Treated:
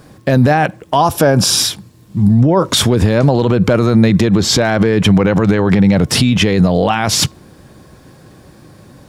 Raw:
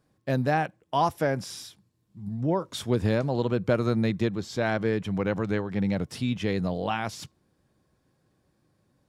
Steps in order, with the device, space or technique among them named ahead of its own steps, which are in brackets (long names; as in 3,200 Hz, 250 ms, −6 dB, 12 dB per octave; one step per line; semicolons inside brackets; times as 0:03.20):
0:00.97–0:01.59: parametric band 2,000 Hz −14.5 dB 0.21 octaves
loud club master (downward compressor 2 to 1, threshold −29 dBFS, peak gain reduction 6.5 dB; hard clipping −18.5 dBFS, distortion −35 dB; boost into a limiter +30 dB)
level −2 dB